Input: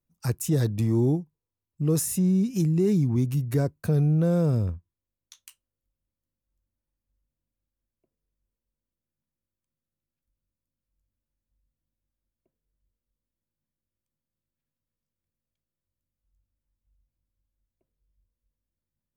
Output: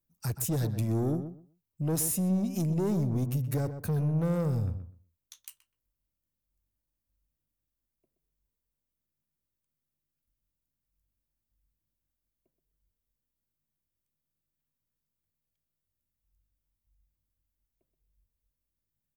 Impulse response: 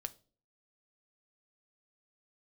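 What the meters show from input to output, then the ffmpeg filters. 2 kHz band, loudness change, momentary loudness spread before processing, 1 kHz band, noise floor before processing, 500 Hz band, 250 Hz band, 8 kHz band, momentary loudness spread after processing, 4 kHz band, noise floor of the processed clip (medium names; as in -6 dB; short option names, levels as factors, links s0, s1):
-4.5 dB, -5.5 dB, 8 LU, 0.0 dB, under -85 dBFS, -6.0 dB, -6.0 dB, -1.0 dB, 10 LU, no reading, under -85 dBFS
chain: -filter_complex "[0:a]highshelf=f=11000:g=11.5,asoftclip=type=tanh:threshold=0.0794,asplit=2[s0][s1];[s1]adelay=125,lowpass=f=1800:p=1,volume=0.335,asplit=2[s2][s3];[s3]adelay=125,lowpass=f=1800:p=1,volume=0.19,asplit=2[s4][s5];[s5]adelay=125,lowpass=f=1800:p=1,volume=0.19[s6];[s2][s4][s6]amix=inputs=3:normalize=0[s7];[s0][s7]amix=inputs=2:normalize=0,volume=0.75"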